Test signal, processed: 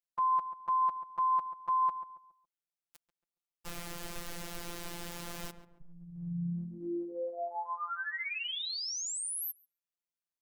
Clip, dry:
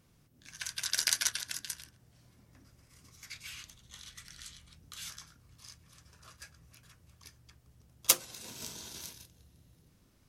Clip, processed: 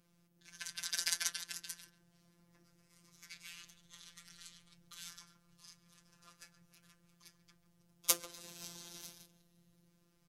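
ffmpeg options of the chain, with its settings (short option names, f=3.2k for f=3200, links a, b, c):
-filter_complex "[0:a]asplit=2[a][b];[b]adelay=139,lowpass=f=1.3k:p=1,volume=-10.5dB,asplit=2[c][d];[d]adelay=139,lowpass=f=1.3k:p=1,volume=0.39,asplit=2[e][f];[f]adelay=139,lowpass=f=1.3k:p=1,volume=0.39,asplit=2[g][h];[h]adelay=139,lowpass=f=1.3k:p=1,volume=0.39[i];[a][c][e][g][i]amix=inputs=5:normalize=0,afftfilt=real='hypot(re,im)*cos(PI*b)':imag='0':win_size=1024:overlap=0.75,volume=-2.5dB"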